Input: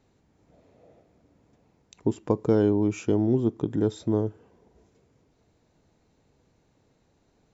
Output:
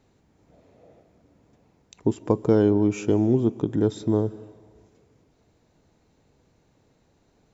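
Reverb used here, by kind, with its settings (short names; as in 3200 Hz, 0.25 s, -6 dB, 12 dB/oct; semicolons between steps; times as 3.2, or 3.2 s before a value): digital reverb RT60 1.5 s, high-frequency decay 1×, pre-delay 0.1 s, DRR 19 dB; gain +2.5 dB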